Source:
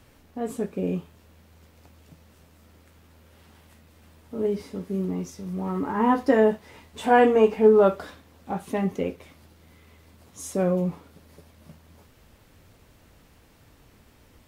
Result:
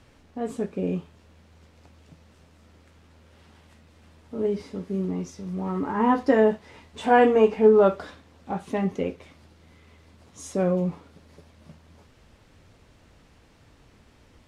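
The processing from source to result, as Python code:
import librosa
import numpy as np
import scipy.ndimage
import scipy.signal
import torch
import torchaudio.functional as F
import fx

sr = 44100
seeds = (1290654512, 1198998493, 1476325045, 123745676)

y = scipy.signal.sosfilt(scipy.signal.butter(2, 7400.0, 'lowpass', fs=sr, output='sos'), x)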